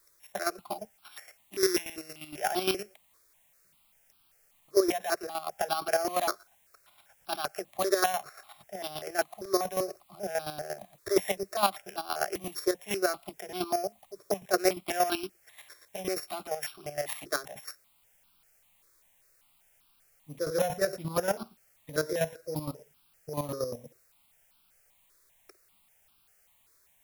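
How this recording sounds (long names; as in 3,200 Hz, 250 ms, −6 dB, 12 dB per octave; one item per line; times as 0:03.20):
a buzz of ramps at a fixed pitch in blocks of 8 samples
chopped level 8.6 Hz, depth 65%, duty 30%
a quantiser's noise floor 12 bits, dither triangular
notches that jump at a steady rate 5.1 Hz 780–1,900 Hz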